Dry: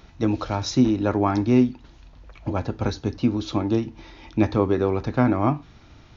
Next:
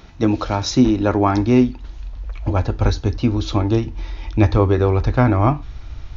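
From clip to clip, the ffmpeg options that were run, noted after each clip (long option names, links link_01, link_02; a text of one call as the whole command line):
ffmpeg -i in.wav -af "asubboost=boost=11:cutoff=59,volume=5.5dB" out.wav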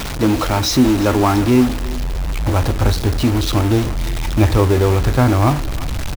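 ffmpeg -i in.wav -af "aeval=exprs='val(0)+0.5*0.158*sgn(val(0))':channel_layout=same,acrusher=bits=4:mix=0:aa=0.000001,aecho=1:1:342:0.126,volume=-1dB" out.wav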